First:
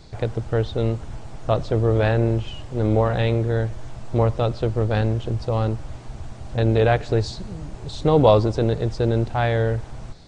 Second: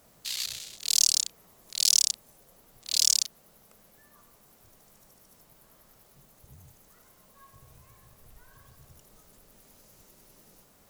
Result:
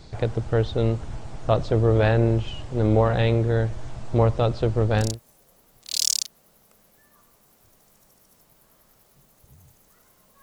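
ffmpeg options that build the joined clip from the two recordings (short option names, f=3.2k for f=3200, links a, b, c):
-filter_complex "[0:a]apad=whole_dur=10.42,atrim=end=10.42,atrim=end=5.2,asetpts=PTS-STARTPTS[a];[1:a]atrim=start=1.98:end=7.42,asetpts=PTS-STARTPTS[b];[a][b]acrossfade=d=0.22:c1=tri:c2=tri"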